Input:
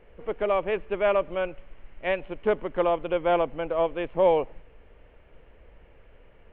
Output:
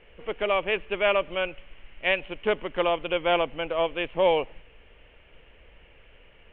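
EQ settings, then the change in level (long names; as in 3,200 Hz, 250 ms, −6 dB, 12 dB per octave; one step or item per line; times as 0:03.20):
low-pass with resonance 3,000 Hz, resonance Q 2.7
high-shelf EQ 2,300 Hz +8 dB
−2.0 dB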